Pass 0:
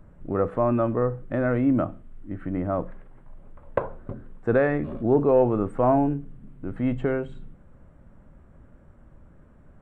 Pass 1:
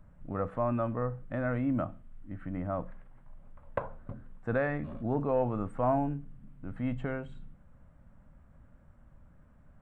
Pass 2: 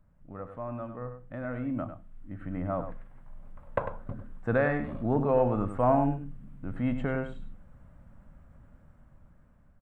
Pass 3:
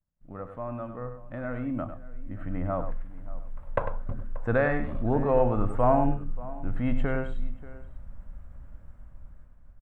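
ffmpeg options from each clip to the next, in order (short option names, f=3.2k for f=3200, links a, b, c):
-af "equalizer=f=380:w=2.1:g=-10.5,volume=-5.5dB"
-filter_complex "[0:a]dynaudnorm=f=880:g=5:m=12dB,asplit=2[a][b];[b]adelay=99.13,volume=-9dB,highshelf=f=4k:g=-2.23[c];[a][c]amix=inputs=2:normalize=0,volume=-8dB"
-filter_complex "[0:a]asubboost=boost=3.5:cutoff=76,agate=range=-33dB:threshold=-47dB:ratio=3:detection=peak,asplit=2[a][b];[b]adelay=583.1,volume=-18dB,highshelf=f=4k:g=-13.1[c];[a][c]amix=inputs=2:normalize=0,volume=2dB"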